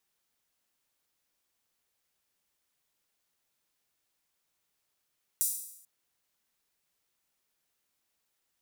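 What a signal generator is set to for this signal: open hi-hat length 0.44 s, high-pass 8300 Hz, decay 0.76 s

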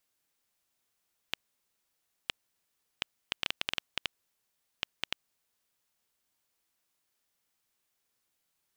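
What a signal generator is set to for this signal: random clicks 4.1/s -11 dBFS 3.98 s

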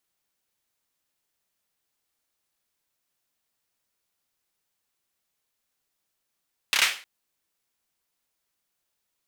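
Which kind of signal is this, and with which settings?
hand clap length 0.31 s, apart 29 ms, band 2300 Hz, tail 0.37 s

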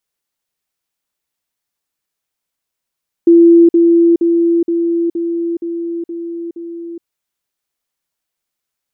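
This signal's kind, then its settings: level ladder 338 Hz -3 dBFS, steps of -3 dB, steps 8, 0.42 s 0.05 s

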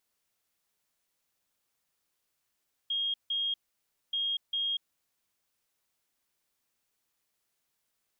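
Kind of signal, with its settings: beep pattern sine 3250 Hz, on 0.24 s, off 0.16 s, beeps 2, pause 0.59 s, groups 2, -28 dBFS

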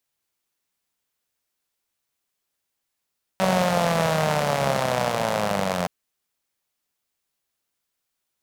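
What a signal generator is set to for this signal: four-cylinder engine model, changing speed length 2.47 s, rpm 5700, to 2600, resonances 180/590 Hz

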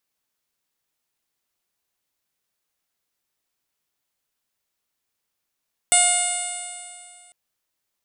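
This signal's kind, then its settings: stretched partials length 1.40 s, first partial 712 Hz, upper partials -9.5/-2.5/-5/-5.5/-10.5/-14.5/-18/-12/-4.5/4/3/0.5/-8 dB, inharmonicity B 0.00034, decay 2.26 s, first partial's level -21 dB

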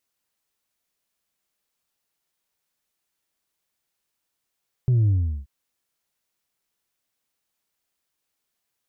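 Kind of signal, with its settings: sub drop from 130 Hz, over 0.58 s, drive 2 dB, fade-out 0.38 s, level -16 dB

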